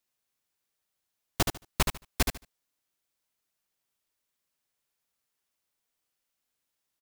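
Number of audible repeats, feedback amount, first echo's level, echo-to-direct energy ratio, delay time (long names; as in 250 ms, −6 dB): 3, 19%, −5.5 dB, −5.5 dB, 74 ms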